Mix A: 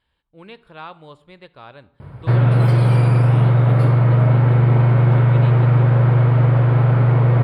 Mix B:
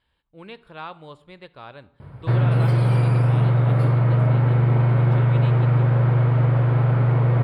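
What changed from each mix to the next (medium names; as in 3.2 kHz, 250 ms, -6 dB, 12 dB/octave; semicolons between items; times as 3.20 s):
background -4.0 dB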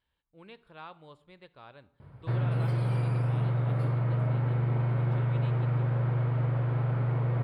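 speech -10.0 dB; background -10.0 dB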